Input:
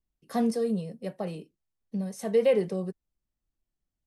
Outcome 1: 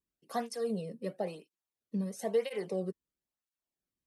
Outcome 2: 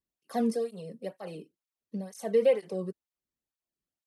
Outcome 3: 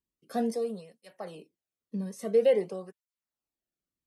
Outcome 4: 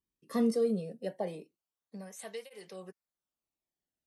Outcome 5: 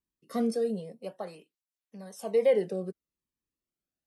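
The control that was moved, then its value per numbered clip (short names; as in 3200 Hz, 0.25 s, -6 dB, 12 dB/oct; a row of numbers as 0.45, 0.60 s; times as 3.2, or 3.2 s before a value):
tape flanging out of phase, nulls at: 1, 2.1, 0.49, 0.2, 0.3 Hz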